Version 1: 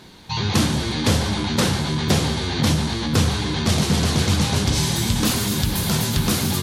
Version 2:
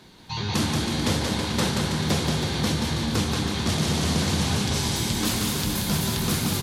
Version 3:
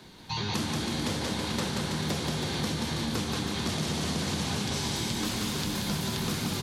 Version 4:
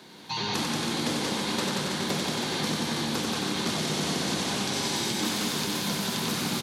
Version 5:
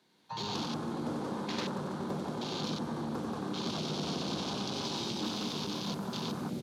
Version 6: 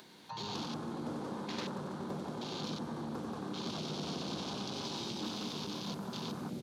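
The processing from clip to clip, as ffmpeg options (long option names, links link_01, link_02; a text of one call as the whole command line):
ffmpeg -i in.wav -filter_complex "[0:a]acrossover=split=120[link_01][link_02];[link_01]alimiter=level_in=1dB:limit=-24dB:level=0:latency=1,volume=-1dB[link_03];[link_03][link_02]amix=inputs=2:normalize=0,aecho=1:1:180|324|439.2|531.4|605.1:0.631|0.398|0.251|0.158|0.1,volume=-5.5dB" out.wav
ffmpeg -i in.wav -filter_complex "[0:a]acrossover=split=130|7500[link_01][link_02][link_03];[link_01]acompressor=threshold=-42dB:ratio=4[link_04];[link_02]acompressor=threshold=-29dB:ratio=4[link_05];[link_03]acompressor=threshold=-47dB:ratio=4[link_06];[link_04][link_05][link_06]amix=inputs=3:normalize=0" out.wav
ffmpeg -i in.wav -af "highpass=200,aecho=1:1:93:0.668,volume=2dB" out.wav
ffmpeg -i in.wav -filter_complex "[0:a]afwtdn=0.0251,asplit=2[link_01][link_02];[link_02]asoftclip=type=tanh:threshold=-32dB,volume=-8dB[link_03];[link_01][link_03]amix=inputs=2:normalize=0,volume=-7dB" out.wav
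ffmpeg -i in.wav -af "acompressor=mode=upward:threshold=-39dB:ratio=2.5,volume=-4dB" out.wav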